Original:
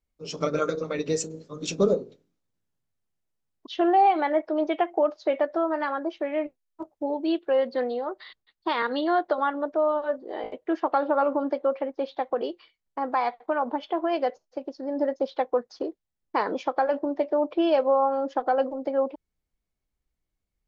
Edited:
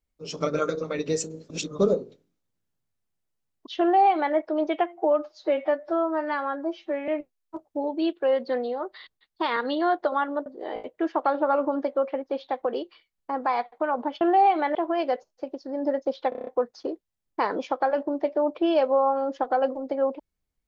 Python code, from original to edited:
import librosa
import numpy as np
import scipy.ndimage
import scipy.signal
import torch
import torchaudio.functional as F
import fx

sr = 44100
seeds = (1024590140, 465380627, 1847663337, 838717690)

y = fx.edit(x, sr, fx.reverse_span(start_s=1.5, length_s=0.29),
    fx.duplicate(start_s=3.81, length_s=0.54, to_s=13.89),
    fx.stretch_span(start_s=4.86, length_s=1.48, factor=1.5),
    fx.cut(start_s=9.72, length_s=0.42),
    fx.stutter(start_s=15.43, slice_s=0.03, count=7), tone=tone)